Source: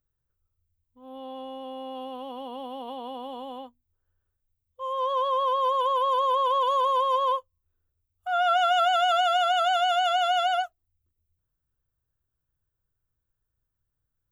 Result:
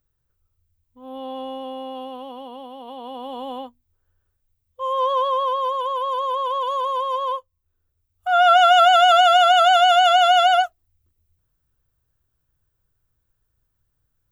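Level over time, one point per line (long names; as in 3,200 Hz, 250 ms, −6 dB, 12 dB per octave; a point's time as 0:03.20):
0:01.49 +7 dB
0:02.77 −1.5 dB
0:03.49 +7 dB
0:04.98 +7 dB
0:05.81 0 dB
0:07.30 0 dB
0:08.43 +9 dB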